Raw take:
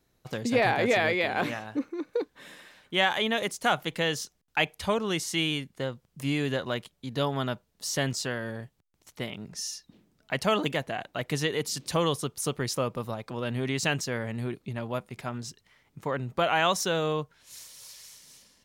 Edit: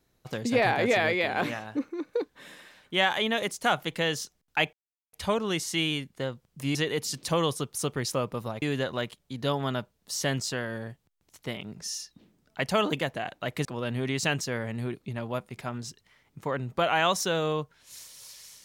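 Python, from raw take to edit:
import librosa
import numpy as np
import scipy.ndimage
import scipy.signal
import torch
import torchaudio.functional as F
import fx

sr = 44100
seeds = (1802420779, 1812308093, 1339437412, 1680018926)

y = fx.edit(x, sr, fx.insert_silence(at_s=4.73, length_s=0.4),
    fx.move(start_s=11.38, length_s=1.87, to_s=6.35), tone=tone)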